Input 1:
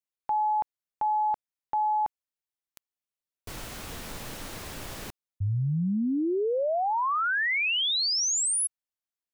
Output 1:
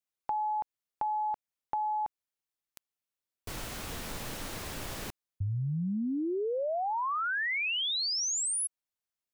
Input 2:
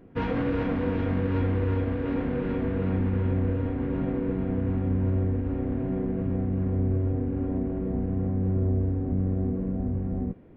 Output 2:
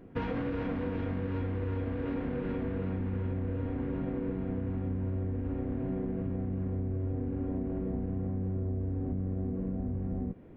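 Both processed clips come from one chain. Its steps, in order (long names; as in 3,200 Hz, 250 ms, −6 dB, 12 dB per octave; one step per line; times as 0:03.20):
downward compressor, threshold −30 dBFS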